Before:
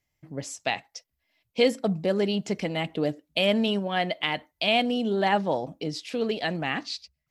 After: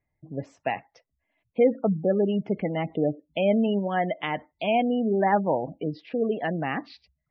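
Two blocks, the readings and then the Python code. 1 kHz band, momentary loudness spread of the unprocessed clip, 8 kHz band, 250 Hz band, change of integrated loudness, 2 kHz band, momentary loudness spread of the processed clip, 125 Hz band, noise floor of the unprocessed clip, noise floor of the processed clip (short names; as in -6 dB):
+1.5 dB, 13 LU, under -25 dB, +2.0 dB, +1.0 dB, -4.0 dB, 11 LU, +2.0 dB, -81 dBFS, -81 dBFS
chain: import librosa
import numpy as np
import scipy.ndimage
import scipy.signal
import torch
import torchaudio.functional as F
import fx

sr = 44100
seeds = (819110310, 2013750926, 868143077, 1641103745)

y = scipy.signal.sosfilt(scipy.signal.butter(2, 1700.0, 'lowpass', fs=sr, output='sos'), x)
y = fx.spec_gate(y, sr, threshold_db=-25, keep='strong')
y = y * 10.0 ** (2.0 / 20.0)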